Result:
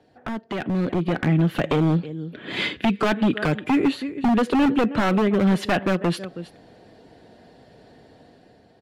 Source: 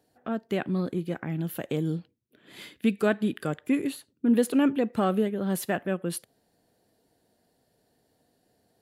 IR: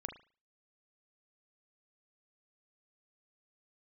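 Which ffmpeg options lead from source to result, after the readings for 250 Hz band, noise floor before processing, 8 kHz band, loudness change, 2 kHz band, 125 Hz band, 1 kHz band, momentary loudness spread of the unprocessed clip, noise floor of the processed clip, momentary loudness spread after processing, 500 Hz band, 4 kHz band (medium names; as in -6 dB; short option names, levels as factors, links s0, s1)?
+5.5 dB, -71 dBFS, no reading, +6.0 dB, +9.0 dB, +9.0 dB, +9.5 dB, 10 LU, -55 dBFS, 13 LU, +4.5 dB, +10.5 dB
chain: -filter_complex "[0:a]lowpass=3000,aecho=1:1:321:0.0708,asplit=2[s0][s1];[s1]asoftclip=type=hard:threshold=0.0631,volume=0.531[s2];[s0][s2]amix=inputs=2:normalize=0,acompressor=threshold=0.02:ratio=3,acrossover=split=100|1900[s3][s4][s5];[s4]aeval=exprs='0.0316*(abs(mod(val(0)/0.0316+3,4)-2)-1)':c=same[s6];[s5]aecho=1:1:5.4:0.93[s7];[s3][s6][s7]amix=inputs=3:normalize=0,dynaudnorm=f=140:g=13:m=2.82,volume=2.37"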